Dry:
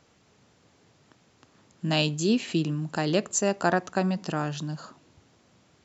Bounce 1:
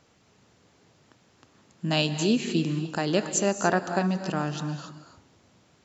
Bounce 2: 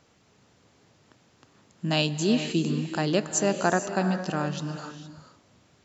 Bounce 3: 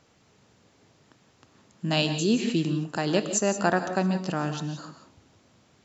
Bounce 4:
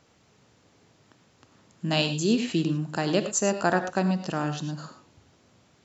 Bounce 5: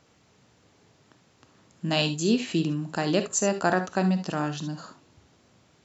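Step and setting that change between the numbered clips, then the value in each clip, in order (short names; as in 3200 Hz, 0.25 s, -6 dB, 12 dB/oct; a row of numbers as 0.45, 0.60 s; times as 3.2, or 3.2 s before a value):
non-linear reverb, gate: 310, 490, 200, 130, 90 ms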